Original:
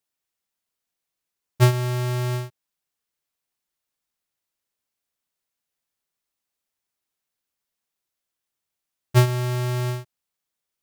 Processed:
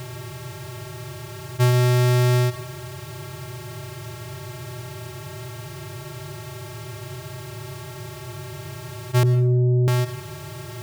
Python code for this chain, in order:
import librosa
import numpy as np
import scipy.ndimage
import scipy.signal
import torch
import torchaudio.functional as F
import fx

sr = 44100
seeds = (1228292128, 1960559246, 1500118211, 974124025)

y = fx.bin_compress(x, sr, power=0.2)
y = fx.cheby2_lowpass(y, sr, hz=1600.0, order=4, stop_db=60, at=(9.23, 9.88))
y = fx.rev_plate(y, sr, seeds[0], rt60_s=0.7, hf_ratio=0.7, predelay_ms=90, drr_db=14.0)
y = F.gain(torch.from_numpy(y), -4.0).numpy()